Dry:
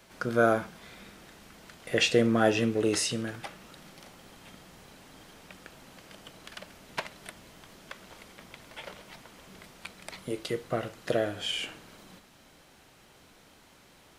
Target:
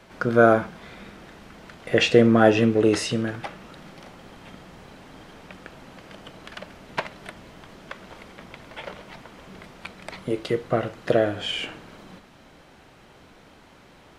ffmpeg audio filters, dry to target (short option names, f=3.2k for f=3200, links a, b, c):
-af "lowpass=f=2.2k:p=1,volume=8dB"